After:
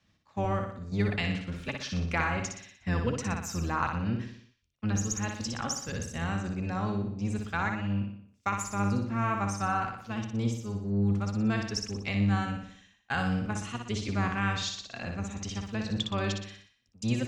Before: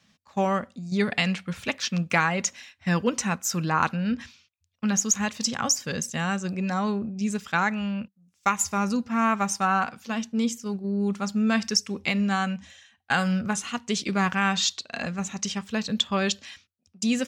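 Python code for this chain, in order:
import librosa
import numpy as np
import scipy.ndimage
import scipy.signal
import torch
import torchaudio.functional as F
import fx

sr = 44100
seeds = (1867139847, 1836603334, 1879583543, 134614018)

y = fx.octave_divider(x, sr, octaves=1, level_db=0.0)
y = fx.high_shelf(y, sr, hz=6300.0, db=-9.0)
y = fx.echo_feedback(y, sr, ms=60, feedback_pct=51, wet_db=-5)
y = F.gain(torch.from_numpy(y), -7.5).numpy()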